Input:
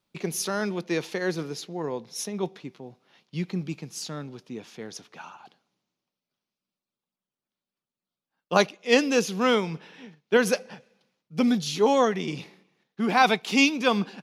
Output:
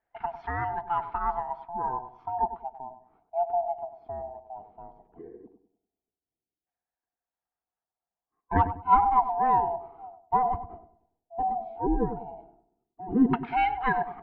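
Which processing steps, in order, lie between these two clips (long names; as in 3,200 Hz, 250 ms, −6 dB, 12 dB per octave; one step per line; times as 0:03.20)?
neighbouring bands swapped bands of 500 Hz
auto-filter low-pass saw down 0.15 Hz 350–1,700 Hz
high-frequency loss of the air 340 metres
on a send: feedback echo with a low-pass in the loop 98 ms, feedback 35%, low-pass 880 Hz, level −9 dB
on the sum: level −3.5 dB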